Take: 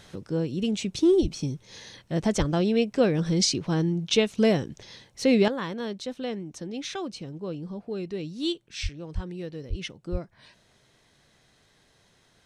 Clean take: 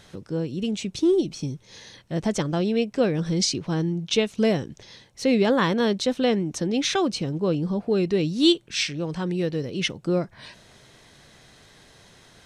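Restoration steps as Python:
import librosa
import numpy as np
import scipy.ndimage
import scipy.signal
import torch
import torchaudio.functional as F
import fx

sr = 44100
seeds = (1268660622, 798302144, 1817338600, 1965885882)

y = fx.fix_deplosive(x, sr, at_s=(1.21, 2.38, 8.82, 9.14, 9.69, 10.11))
y = fx.gain(y, sr, db=fx.steps((0.0, 0.0), (5.48, 10.5)))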